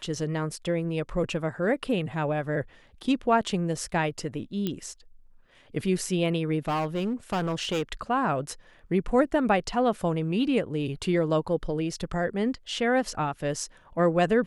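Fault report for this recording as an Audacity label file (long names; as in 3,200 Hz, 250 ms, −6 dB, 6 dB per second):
4.670000	4.670000	click −16 dBFS
6.680000	7.830000	clipping −23.5 dBFS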